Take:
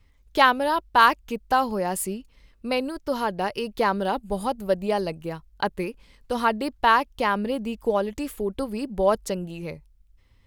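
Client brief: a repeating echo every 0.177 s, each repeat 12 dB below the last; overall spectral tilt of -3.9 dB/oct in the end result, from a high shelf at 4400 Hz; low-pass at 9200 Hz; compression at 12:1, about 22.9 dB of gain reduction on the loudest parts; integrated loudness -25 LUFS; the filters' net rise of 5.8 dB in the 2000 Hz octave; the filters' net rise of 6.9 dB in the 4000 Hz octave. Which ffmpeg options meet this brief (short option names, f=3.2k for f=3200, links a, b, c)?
-af "lowpass=9.2k,equalizer=f=2k:t=o:g=6,equalizer=f=4k:t=o:g=3.5,highshelf=f=4.4k:g=6.5,acompressor=threshold=-31dB:ratio=12,aecho=1:1:177|354|531:0.251|0.0628|0.0157,volume=11dB"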